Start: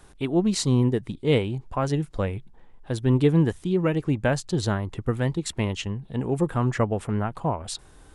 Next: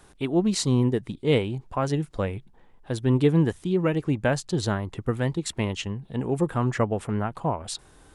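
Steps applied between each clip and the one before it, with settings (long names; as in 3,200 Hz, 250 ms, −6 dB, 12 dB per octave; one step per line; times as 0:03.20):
low-shelf EQ 70 Hz −6.5 dB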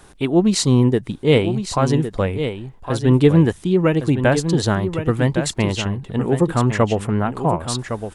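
single-tap delay 1,110 ms −9 dB
level +7 dB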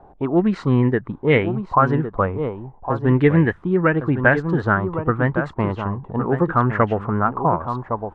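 envelope-controlled low-pass 750–1,900 Hz up, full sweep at −10 dBFS
level −2.5 dB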